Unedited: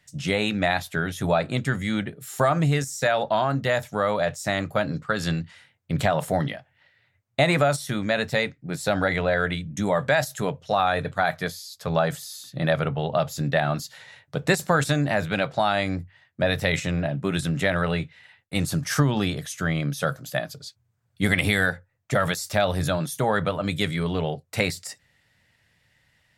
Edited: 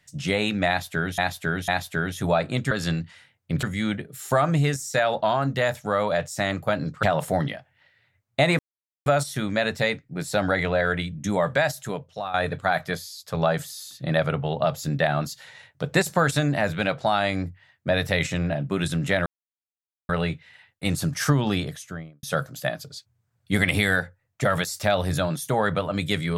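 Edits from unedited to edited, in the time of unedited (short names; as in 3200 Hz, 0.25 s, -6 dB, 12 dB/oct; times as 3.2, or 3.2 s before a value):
0.68–1.18 loop, 3 plays
5.11–6.03 move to 1.71
7.59 insert silence 0.47 s
10.04–10.87 fade out, to -12 dB
17.79 insert silence 0.83 s
19.29–19.93 studio fade out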